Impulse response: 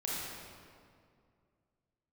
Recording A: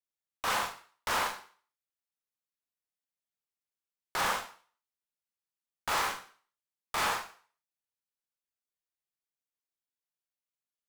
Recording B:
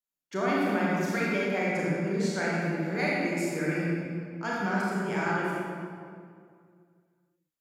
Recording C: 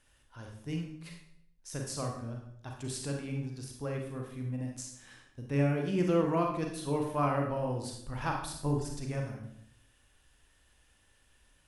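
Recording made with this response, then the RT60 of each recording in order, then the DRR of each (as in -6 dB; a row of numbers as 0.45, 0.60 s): B; 0.45, 2.3, 0.75 s; 2.0, -6.0, 1.0 dB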